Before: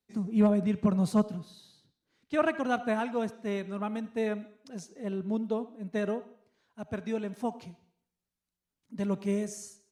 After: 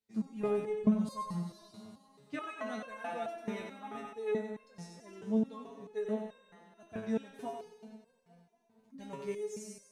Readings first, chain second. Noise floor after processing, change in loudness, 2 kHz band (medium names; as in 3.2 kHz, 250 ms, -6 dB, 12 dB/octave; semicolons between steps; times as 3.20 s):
-70 dBFS, -6.5 dB, -8.5 dB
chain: backward echo that repeats 116 ms, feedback 79%, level -14 dB; thinning echo 94 ms, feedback 54%, high-pass 550 Hz, level -4.5 dB; resonator arpeggio 4.6 Hz 110–530 Hz; trim +5 dB